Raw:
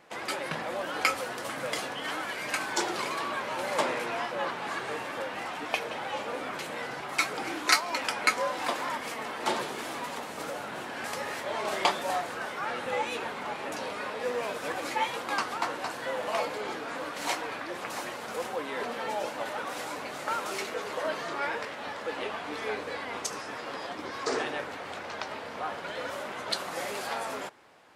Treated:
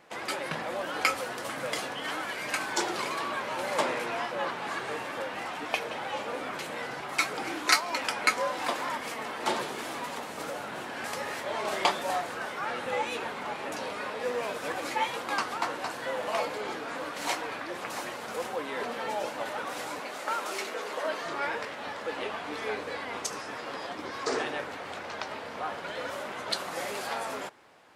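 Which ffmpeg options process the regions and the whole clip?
-filter_complex "[0:a]asettb=1/sr,asplit=3[s0][s1][s2];[s0]atrim=end=20.004[s3];[s1]atrim=start=20:end=21.26,asetpts=PTS-STARTPTS,afade=t=in:d=0.004:c=qsin,afade=t=out:st=1.256:d=0.004:c=qsin,highpass=220,bandreject=f=50:t=h:w=6,bandreject=f=100:t=h:w=6,bandreject=f=150:t=h:w=6,bandreject=f=200:t=h:w=6,bandreject=f=250:t=h:w=6,bandreject=f=300:t=h:w=6,bandreject=f=350:t=h:w=6,bandreject=f=400:t=h:w=6,bandreject=f=450:t=h:w=6,bandreject=f=500:t=h:w=6[s4];[s2]atrim=start=21.256[s5];[s3][s4]acrossfade=d=0.004:c1=hsin:c2=qsin[s6];[s6][s5]acrossfade=d=0.004:c1=qsin:c2=hsin"

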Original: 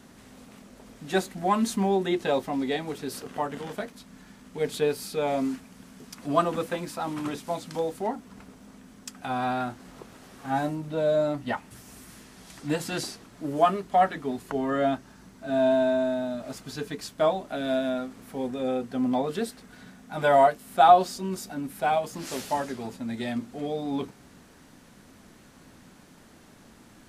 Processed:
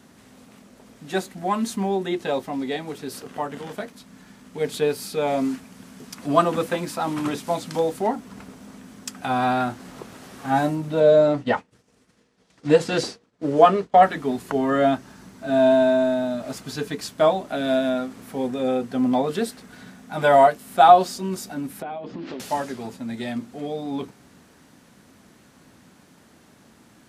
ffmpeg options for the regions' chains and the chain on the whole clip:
-filter_complex "[0:a]asettb=1/sr,asplit=3[s0][s1][s2];[s0]atrim=end=11.004[s3];[s1]atrim=start=11:end=14.03,asetpts=PTS-STARTPTS,afade=t=in:d=0.004:c=qsin,afade=t=out:st=3.026:d=0.004:c=qsin,lowpass=6600,agate=range=0.0224:threshold=0.0141:ratio=3:release=100:detection=peak,equalizer=f=480:w=4.6:g=10.5[s4];[s2]atrim=start=14.026[s5];[s3][s4]acrossfade=d=0.004:c1=hsin:c2=qsin[s6];[s6][s5]acrossfade=d=0.004:c1=qsin:c2=hsin,asettb=1/sr,asplit=3[s7][s8][s9];[s7]atrim=end=21.824[s10];[s8]atrim=start=21.82:end=22.4,asetpts=PTS-STARTPTS,afade=t=in:d=0.004:c=qsin,afade=t=out:st=0.576:d=0.004:c=qsin,lowpass=f=3800:w=0.5412,lowpass=f=3800:w=1.3066,equalizer=f=300:t=o:w=1.4:g=10.5,acompressor=threshold=0.0251:ratio=12:attack=3.2:release=140:knee=1:detection=peak[s11];[s9]atrim=start=22.396[s12];[s10][s11]acrossfade=d=0.004:c1=hsin:c2=qsin[s13];[s13][s12]acrossfade=d=0.004:c1=qsin:c2=hsin,dynaudnorm=f=680:g=17:m=3.76,highpass=68"

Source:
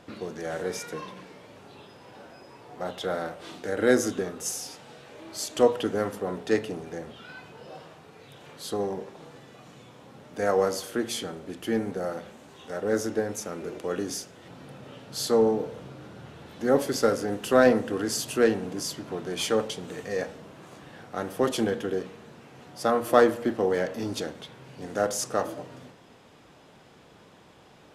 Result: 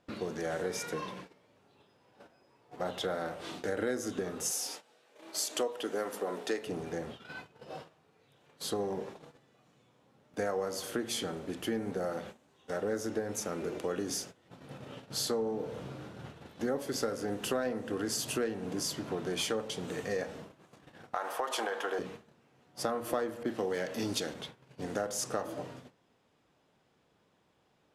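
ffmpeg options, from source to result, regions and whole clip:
-filter_complex "[0:a]asettb=1/sr,asplit=3[s0][s1][s2];[s0]atrim=end=4.514[s3];[s1]atrim=start=4.51:end=6.67,asetpts=PTS-STARTPTS,afade=t=in:d=0.004:c=qsin,afade=t=out:st=2.156:d=0.004:c=qsin,highpass=320,highshelf=f=6200:g=5[s4];[s2]atrim=start=6.666[s5];[s3][s4]acrossfade=d=0.004:c1=hsin:c2=qsin[s6];[s6][s5]acrossfade=d=0.004:c1=qsin:c2=hsin,asettb=1/sr,asplit=3[s7][s8][s9];[s7]atrim=end=21.144[s10];[s8]atrim=start=21.14:end=21.99,asetpts=PTS-STARTPTS,afade=t=in:d=0.004:c=qsin,afade=t=out:st=0.846:d=0.004:c=qsin,highpass=670,equalizer=f=950:w=0.82:g=12,acompressor=threshold=0.0562:ratio=3:attack=3.2:release=140:knee=1:detection=peak[s11];[s9]atrim=start=21.986[s12];[s10][s11]acrossfade=d=0.004:c1=hsin:c2=qsin[s13];[s13][s12]acrossfade=d=0.004:c1=qsin:c2=hsin,asettb=1/sr,asplit=3[s14][s15][s16];[s14]atrim=end=23.434[s17];[s15]atrim=start=23.43:end=24.34,asetpts=PTS-STARTPTS,afade=t=in:d=0.004:c=qsin,afade=t=out:st=0.906:d=0.004:c=qsin,highpass=83,adynamicequalizer=threshold=0.00631:dfrequency=1800:dqfactor=0.7:tfrequency=1800:tqfactor=0.7:attack=5:release=100:ratio=0.375:range=3:mode=boostabove:tftype=highshelf[s18];[s16]atrim=start=24.336[s19];[s17][s18]acrossfade=d=0.004:c1=hsin:c2=qsin[s20];[s20][s19]acrossfade=d=0.004:c1=qsin:c2=hsin,agate=range=0.141:threshold=0.00631:ratio=16:detection=peak,acompressor=threshold=0.0316:ratio=6"

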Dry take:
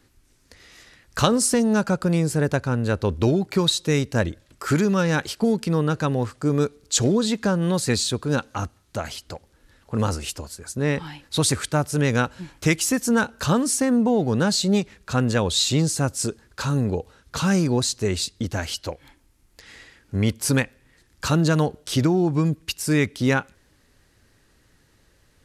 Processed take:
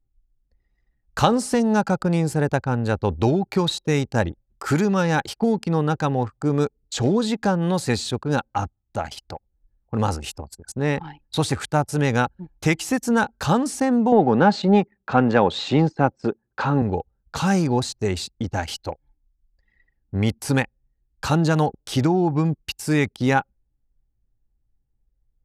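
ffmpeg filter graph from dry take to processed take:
-filter_complex "[0:a]asettb=1/sr,asplit=3[s0][s1][s2];[s0]atrim=end=14.124[s3];[s1]atrim=start=14.12:end=16.82,asetpts=PTS-STARTPTS,afade=t=in:d=0.004:c=qsin,afade=t=out:st=2.696:d=0.004:c=qsin,highpass=180,lowpass=2200,acontrast=39[s4];[s2]atrim=start=16.816[s5];[s3][s4]acrossfade=d=0.004:c1=hsin:c2=qsin[s6];[s6][s5]acrossfade=d=0.004:c1=qsin:c2=hsin,anlmdn=6.31,acrossover=split=3500[s7][s8];[s8]acompressor=threshold=0.0316:ratio=4:attack=1:release=60[s9];[s7][s9]amix=inputs=2:normalize=0,equalizer=f=810:w=5.8:g=11"

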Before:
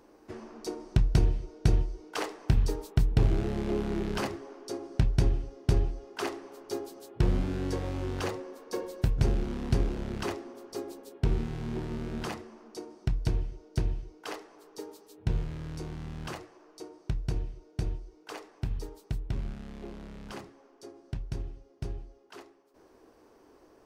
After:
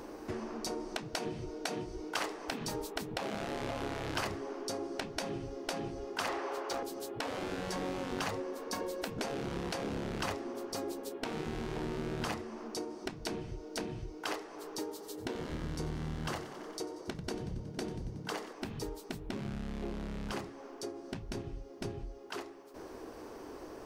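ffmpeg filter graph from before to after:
-filter_complex "[0:a]asettb=1/sr,asplit=3[s0][s1][s2];[s0]atrim=end=6.284[s3];[s1]atrim=start=6.28:end=6.83,asetpts=PTS-STARTPTS,afade=t=in:d=0.004:c=qsin,afade=t=out:st=0.546:d=0.004:c=qsin,highpass=390,asoftclip=type=hard:threshold=0.015,asplit=2[s4][s5];[s5]highpass=f=720:p=1,volume=8.91,asoftclip=type=tanh:threshold=0.0562[s6];[s4][s6]amix=inputs=2:normalize=0,lowpass=f=2000:p=1,volume=0.501[s7];[s2]atrim=start=6.826[s8];[s3][s7]acrossfade=d=0.004:c1=hsin:c2=qsin[s9];[s9][s8]acrossfade=d=0.004:c1=qsin:c2=hsin,asettb=1/sr,asplit=3[s10][s11][s12];[s10]atrim=end=14.904[s13];[s11]atrim=start=14.9:end=18.53,asetpts=PTS-STARTPTS,afade=t=in:d=0.004:c=qsin,afade=t=out:st=3.626:d=0.004:c=qsin,bandreject=f=2500:w=13,asplit=8[s14][s15][s16][s17][s18][s19][s20][s21];[s15]adelay=92,afreqshift=34,volume=0.168[s22];[s16]adelay=184,afreqshift=68,volume=0.106[s23];[s17]adelay=276,afreqshift=102,volume=0.0668[s24];[s18]adelay=368,afreqshift=136,volume=0.0422[s25];[s19]adelay=460,afreqshift=170,volume=0.0263[s26];[s20]adelay=552,afreqshift=204,volume=0.0166[s27];[s21]adelay=644,afreqshift=238,volume=0.0105[s28];[s14][s22][s23][s24][s25][s26][s27][s28]amix=inputs=8:normalize=0,atrim=end_sample=160083[s29];[s12]atrim=start=18.526[s30];[s13][s29]acrossfade=d=0.004:c1=hsin:c2=qsin[s31];[s31][s30]acrossfade=d=0.004:c1=qsin:c2=hsin,afftfilt=real='re*lt(hypot(re,im),0.112)':imag='im*lt(hypot(re,im),0.112)':win_size=1024:overlap=0.75,acompressor=threshold=0.00178:ratio=2,volume=4.22"

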